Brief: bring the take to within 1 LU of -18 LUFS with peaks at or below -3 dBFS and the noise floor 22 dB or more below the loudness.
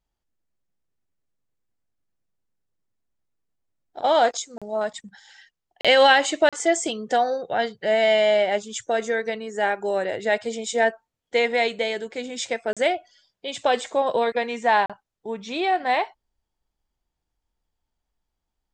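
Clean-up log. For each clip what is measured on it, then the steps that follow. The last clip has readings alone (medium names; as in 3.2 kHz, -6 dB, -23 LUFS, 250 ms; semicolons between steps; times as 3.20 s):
dropouts 5; longest dropout 36 ms; loudness -22.5 LUFS; peak level -5.0 dBFS; loudness target -18.0 LUFS
-> interpolate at 4.58/5.81/6.49/12.73/14.86 s, 36 ms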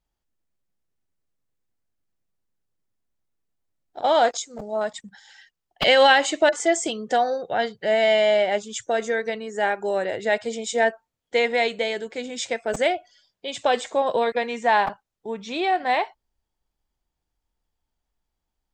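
dropouts 0; loudness -22.5 LUFS; peak level -5.0 dBFS; loudness target -18.0 LUFS
-> trim +4.5 dB; peak limiter -3 dBFS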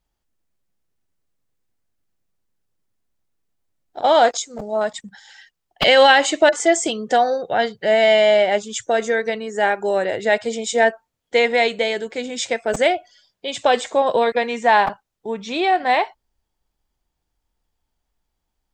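loudness -18.5 LUFS; peak level -3.0 dBFS; noise floor -78 dBFS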